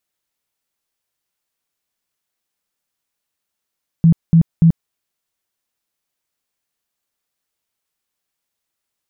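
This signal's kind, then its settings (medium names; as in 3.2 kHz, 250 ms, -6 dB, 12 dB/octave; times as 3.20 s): tone bursts 165 Hz, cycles 14, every 0.29 s, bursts 3, -6 dBFS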